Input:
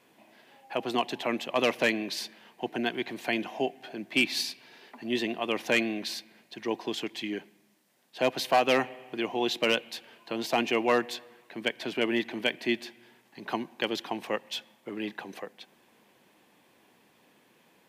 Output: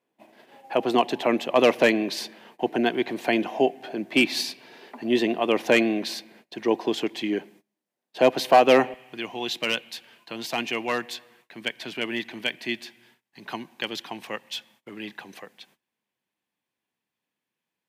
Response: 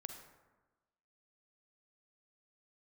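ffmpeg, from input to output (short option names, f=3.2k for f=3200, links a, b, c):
-af "agate=range=-23dB:threshold=-57dB:ratio=16:detection=peak,asetnsamples=n=441:p=0,asendcmd='8.94 equalizer g -7',equalizer=f=450:t=o:w=2.6:g=6.5,volume=2.5dB"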